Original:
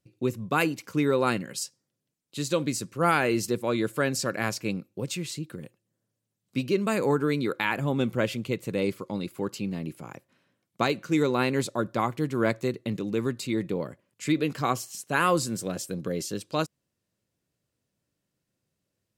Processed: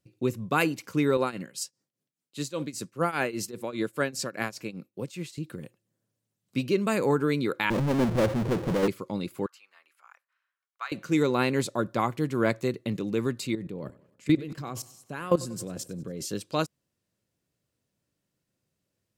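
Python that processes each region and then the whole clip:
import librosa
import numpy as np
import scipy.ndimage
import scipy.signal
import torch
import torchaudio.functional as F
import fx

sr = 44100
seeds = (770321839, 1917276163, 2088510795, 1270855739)

y = fx.chain(x, sr, fx.highpass(hz=120.0, slope=12),
    fx.tremolo_shape(shape='triangle', hz=5.0, depth_pct=90), at=(1.17, 5.38))
y = fx.chain(y, sr, fx.cheby1_lowpass(hz=560.0, order=5),
    fx.level_steps(step_db=13),
    fx.power_curve(exponent=0.35), at=(7.7, 8.88))
y = fx.chain(y, sr, fx.ladder_highpass(hz=1100.0, resonance_pct=45),
    fx.high_shelf(hz=2500.0, db=-9.0), at=(9.46, 10.92))
y = fx.chain(y, sr, fx.low_shelf(hz=440.0, db=7.5),
    fx.level_steps(step_db=18),
    fx.echo_feedback(ms=95, feedback_pct=51, wet_db=-20), at=(13.55, 16.25))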